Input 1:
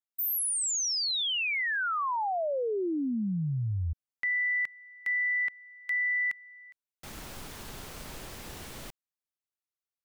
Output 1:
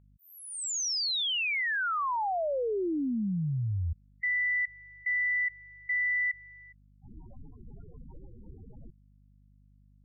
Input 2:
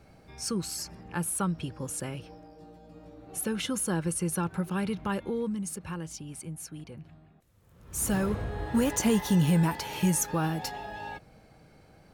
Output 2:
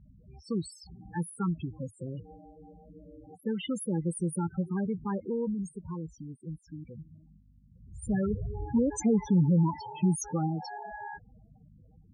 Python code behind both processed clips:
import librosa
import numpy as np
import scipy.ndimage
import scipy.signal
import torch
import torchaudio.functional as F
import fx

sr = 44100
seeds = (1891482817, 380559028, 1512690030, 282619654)

y = fx.dmg_buzz(x, sr, base_hz=50.0, harmonics=5, level_db=-60.0, tilt_db=-4, odd_only=False)
y = fx.spec_topn(y, sr, count=8)
y = fx.env_lowpass(y, sr, base_hz=1800.0, full_db=-27.0)